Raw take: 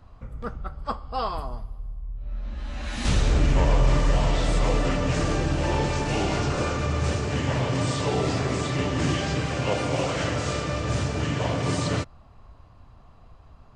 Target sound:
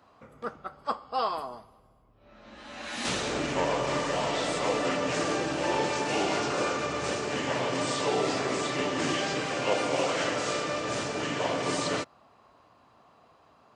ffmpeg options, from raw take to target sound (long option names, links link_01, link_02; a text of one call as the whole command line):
ffmpeg -i in.wav -af "highpass=300" out.wav